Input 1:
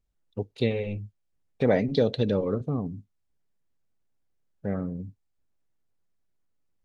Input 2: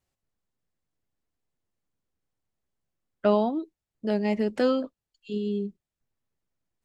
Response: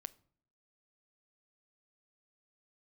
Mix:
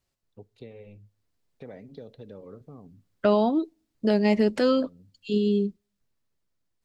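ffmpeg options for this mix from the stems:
-filter_complex "[0:a]acrossover=split=330|1800[s0][s1][s2];[s0]acompressor=threshold=0.0251:ratio=4[s3];[s1]acompressor=threshold=0.0355:ratio=4[s4];[s2]acompressor=threshold=0.00398:ratio=4[s5];[s3][s4][s5]amix=inputs=3:normalize=0,volume=0.15,asplit=2[s6][s7];[s7]volume=0.501[s8];[1:a]equalizer=f=4500:t=o:w=0.7:g=4,bandreject=f=780:w=12,dynaudnorm=f=300:g=9:m=2,volume=1.06,asplit=3[s9][s10][s11];[s10]volume=0.106[s12];[s11]apad=whole_len=301766[s13];[s6][s13]sidechaincompress=threshold=0.126:ratio=8:attack=16:release=1420[s14];[2:a]atrim=start_sample=2205[s15];[s8][s12]amix=inputs=2:normalize=0[s16];[s16][s15]afir=irnorm=-1:irlink=0[s17];[s14][s9][s17]amix=inputs=3:normalize=0,alimiter=limit=0.251:level=0:latency=1:release=296"

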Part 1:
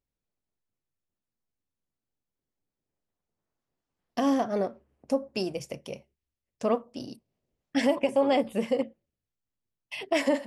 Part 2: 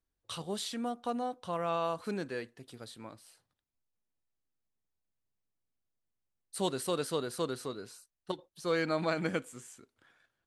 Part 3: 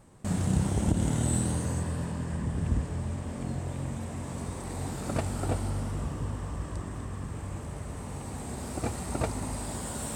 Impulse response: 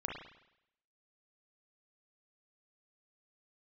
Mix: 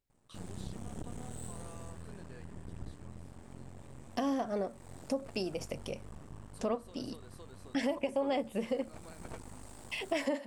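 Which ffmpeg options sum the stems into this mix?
-filter_complex "[0:a]volume=1.06[s0];[1:a]acompressor=threshold=0.02:ratio=6,volume=0.168[s1];[2:a]aeval=exprs='max(val(0),0)':c=same,adelay=100,volume=0.251[s2];[s0][s1][s2]amix=inputs=3:normalize=0,acompressor=threshold=0.0158:ratio=2"

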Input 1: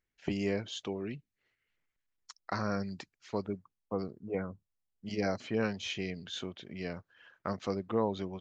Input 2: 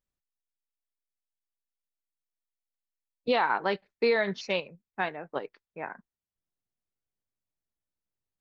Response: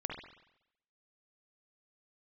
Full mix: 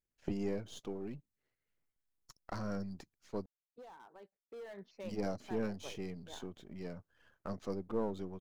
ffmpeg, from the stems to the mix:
-filter_complex "[0:a]aeval=exprs='if(lt(val(0),0),0.447*val(0),val(0))':c=same,volume=0.944,asplit=3[s0][s1][s2];[s0]atrim=end=3.46,asetpts=PTS-STARTPTS,afade=t=out:st=3.456:d=0.004:c=hsin[s3];[s1]atrim=start=3.46:end=4.7,asetpts=PTS-STARTPTS,volume=0[s4];[s2]atrim=start=4.7,asetpts=PTS-STARTPTS,afade=t=in:d=0.004:c=hsin[s5];[s3][s4][s5]concat=n=3:v=0:a=1[s6];[1:a]bass=f=250:g=-5,treble=f=4000:g=-12,asoftclip=type=hard:threshold=0.0596,adelay=500,volume=0.237,afade=t=in:st=4.44:d=0.52:silence=0.316228[s7];[s6][s7]amix=inputs=2:normalize=0,equalizer=f=2600:w=0.53:g=-10"

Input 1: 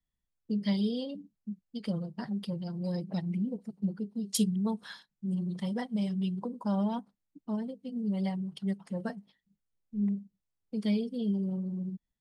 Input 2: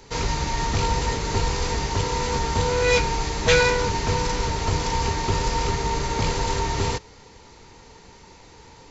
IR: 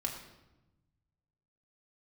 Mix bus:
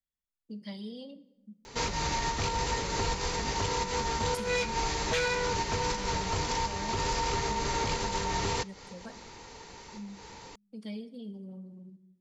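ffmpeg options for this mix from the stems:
-filter_complex "[0:a]volume=0.335,asplit=3[s0][s1][s2];[s1]volume=0.355[s3];[1:a]asoftclip=type=tanh:threshold=0.335,adelay=1650,volume=1.19[s4];[s2]apad=whole_len=465504[s5];[s4][s5]sidechaincompress=threshold=0.00708:ratio=8:attack=16:release=151[s6];[2:a]atrim=start_sample=2205[s7];[s3][s7]afir=irnorm=-1:irlink=0[s8];[s0][s6][s8]amix=inputs=3:normalize=0,lowshelf=f=300:g=-6.5,alimiter=limit=0.0891:level=0:latency=1:release=217"

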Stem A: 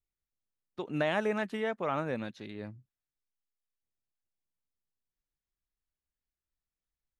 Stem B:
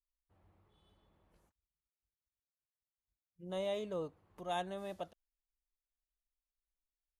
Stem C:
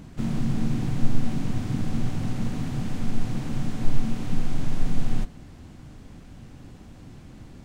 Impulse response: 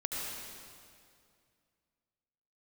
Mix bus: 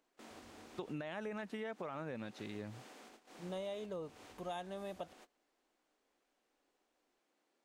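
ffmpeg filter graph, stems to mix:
-filter_complex "[0:a]alimiter=level_in=1.12:limit=0.0631:level=0:latency=1:release=20,volume=0.891,volume=0.944,asplit=2[s0][s1];[1:a]volume=1.33[s2];[2:a]acompressor=threshold=0.112:ratio=20,highpass=f=390:w=0.5412,highpass=f=390:w=1.3066,volume=0.224[s3];[s1]apad=whole_len=337175[s4];[s3][s4]sidechaincompress=threshold=0.00708:ratio=3:attack=28:release=138[s5];[s0][s2][s5]amix=inputs=3:normalize=0,agate=range=0.251:threshold=0.00112:ratio=16:detection=peak,acompressor=threshold=0.01:ratio=6"

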